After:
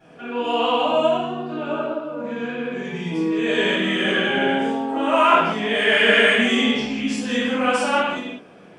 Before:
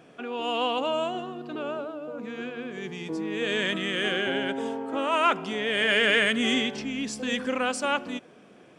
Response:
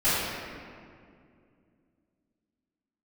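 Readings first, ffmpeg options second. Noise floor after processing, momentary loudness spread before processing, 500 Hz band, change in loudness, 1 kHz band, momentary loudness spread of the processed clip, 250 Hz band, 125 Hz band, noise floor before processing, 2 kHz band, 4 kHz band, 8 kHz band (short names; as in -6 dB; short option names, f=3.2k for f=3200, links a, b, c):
-46 dBFS, 14 LU, +7.5 dB, +7.0 dB, +8.5 dB, 13 LU, +8.0 dB, +8.5 dB, -53 dBFS, +6.5 dB, +5.5 dB, +2.0 dB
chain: -filter_complex "[0:a]equalizer=f=920:t=o:w=0.77:g=2.5[a];[1:a]atrim=start_sample=2205,afade=t=out:st=0.27:d=0.01,atrim=end_sample=12348[b];[a][b]afir=irnorm=-1:irlink=0,volume=-8.5dB"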